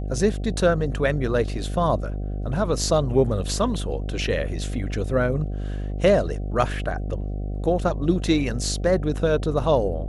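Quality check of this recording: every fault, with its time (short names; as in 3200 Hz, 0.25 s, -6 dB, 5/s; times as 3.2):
buzz 50 Hz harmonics 15 -28 dBFS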